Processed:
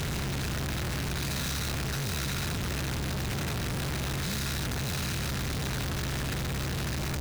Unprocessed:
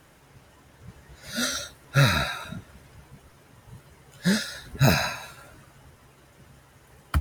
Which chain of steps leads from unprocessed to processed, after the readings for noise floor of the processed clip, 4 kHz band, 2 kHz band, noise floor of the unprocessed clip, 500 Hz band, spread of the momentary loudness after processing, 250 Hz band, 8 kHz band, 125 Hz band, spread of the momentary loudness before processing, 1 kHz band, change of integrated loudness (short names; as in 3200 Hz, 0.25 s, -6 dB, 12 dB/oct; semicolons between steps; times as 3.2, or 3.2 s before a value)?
-32 dBFS, -1.5 dB, -4.0 dB, -56 dBFS, -3.0 dB, 1 LU, -3.5 dB, +0.5 dB, -2.0 dB, 17 LU, -4.0 dB, -6.0 dB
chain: per-bin compression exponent 0.2; passive tone stack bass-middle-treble 6-0-2; Schmitt trigger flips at -45.5 dBFS; gain +3 dB